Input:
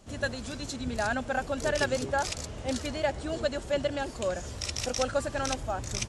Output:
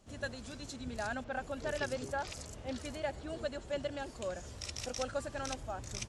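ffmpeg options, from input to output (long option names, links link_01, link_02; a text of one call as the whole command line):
ffmpeg -i in.wav -filter_complex "[0:a]asettb=1/sr,asplit=3[link_01][link_02][link_03];[link_01]atrim=end=1.244[link_04];[link_02]atrim=start=1.24:end=3.71,asetpts=PTS-STARTPTS,afade=type=in:duration=0.004:curve=qsin,afade=type=out:start_time=2.466:duration=0.004:curve=qsin,acrossover=split=5500[link_05][link_06];[link_06]adelay=90[link_07];[link_05][link_07]amix=inputs=2:normalize=0,atrim=end_sample=108927[link_08];[link_03]atrim=start=3.706[link_09];[link_04][link_08]acrossfade=duration=0.004:curve1=hsin:curve2=qsin[link_10];[link_10][link_09]acrossfade=duration=0.004:curve1=qsin:curve2=hsin,volume=-8.5dB" out.wav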